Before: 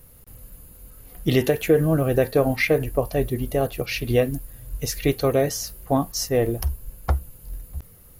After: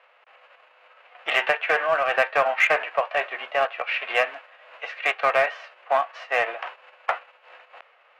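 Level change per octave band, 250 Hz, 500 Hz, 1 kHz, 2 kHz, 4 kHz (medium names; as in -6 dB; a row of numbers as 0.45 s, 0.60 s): -25.5 dB, -4.0 dB, +7.5 dB, +8.5 dB, 0.0 dB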